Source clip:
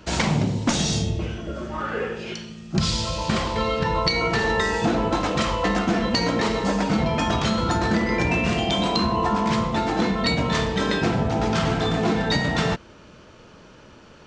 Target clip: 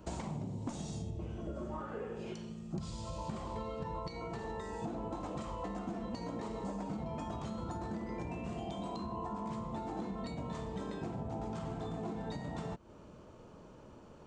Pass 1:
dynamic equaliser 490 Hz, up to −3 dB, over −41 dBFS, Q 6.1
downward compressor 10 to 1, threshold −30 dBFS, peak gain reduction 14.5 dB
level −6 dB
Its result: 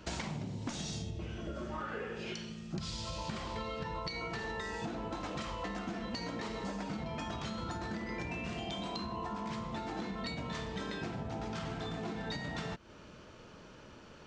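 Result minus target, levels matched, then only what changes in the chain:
4,000 Hz band +9.5 dB
add after downward compressor: flat-topped bell 2,900 Hz −11 dB 2.4 octaves

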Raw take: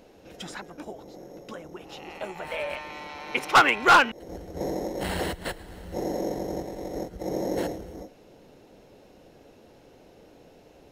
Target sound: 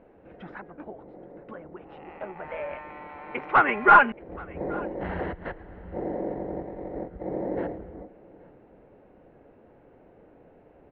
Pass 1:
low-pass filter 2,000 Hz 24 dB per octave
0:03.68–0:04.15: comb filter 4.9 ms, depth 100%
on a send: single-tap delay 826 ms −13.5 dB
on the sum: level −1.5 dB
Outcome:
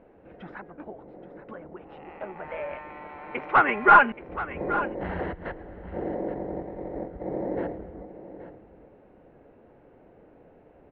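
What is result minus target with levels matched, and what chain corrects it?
echo-to-direct +10 dB
low-pass filter 2,000 Hz 24 dB per octave
0:03.68–0:04.15: comb filter 4.9 ms, depth 100%
on a send: single-tap delay 826 ms −23.5 dB
on the sum: level −1.5 dB

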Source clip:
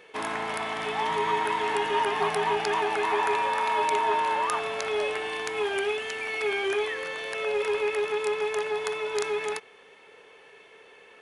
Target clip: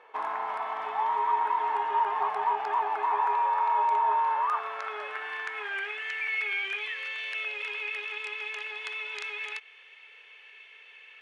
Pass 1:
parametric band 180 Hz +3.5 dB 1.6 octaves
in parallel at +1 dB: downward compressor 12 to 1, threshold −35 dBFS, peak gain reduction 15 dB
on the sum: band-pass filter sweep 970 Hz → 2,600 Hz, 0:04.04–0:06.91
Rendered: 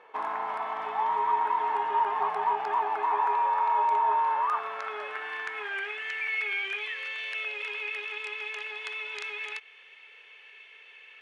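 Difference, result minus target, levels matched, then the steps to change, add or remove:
250 Hz band +3.0 dB
change: parametric band 180 Hz −3.5 dB 1.6 octaves

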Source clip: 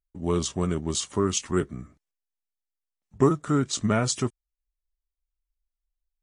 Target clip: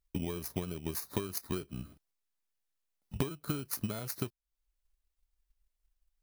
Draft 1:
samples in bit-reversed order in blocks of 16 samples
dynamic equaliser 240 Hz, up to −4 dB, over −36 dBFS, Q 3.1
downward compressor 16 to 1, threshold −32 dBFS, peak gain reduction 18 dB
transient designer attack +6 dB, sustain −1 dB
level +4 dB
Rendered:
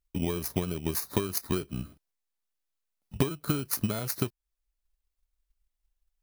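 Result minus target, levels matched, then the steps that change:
downward compressor: peak gain reduction −6.5 dB
change: downward compressor 16 to 1, threshold −39 dBFS, peak gain reduction 24.5 dB

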